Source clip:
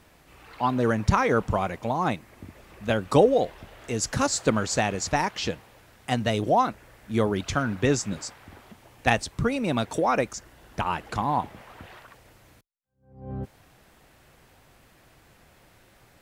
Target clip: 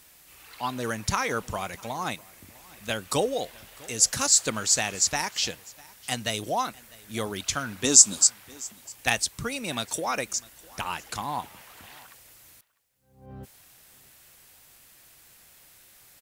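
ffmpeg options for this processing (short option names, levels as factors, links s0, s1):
-filter_complex "[0:a]asettb=1/sr,asplit=3[s0][s1][s2];[s0]atrim=end=7.844[s3];[s1]atrim=start=7.84:end=8.27,asetpts=PTS-STARTPTS,afade=t=in:d=0.004:c=qsin,afade=t=out:st=0.426:d=0.004:c=qsin,equalizer=f=125:t=o:w=1:g=-6,equalizer=f=250:t=o:w=1:g=8,equalizer=f=1000:t=o:w=1:g=6,equalizer=f=2000:t=o:w=1:g=-8,equalizer=f=4000:t=o:w=1:g=5,equalizer=f=8000:t=o:w=1:g=11[s4];[s2]atrim=start=8.266[s5];[s3][s4]acrossfade=d=0.004:c1=hsin:c2=qsin[s6];[s6][s5]acrossfade=d=0.004:c1=qsin:c2=hsin,aecho=1:1:651:0.0668,crystalizer=i=8.5:c=0,volume=0.335"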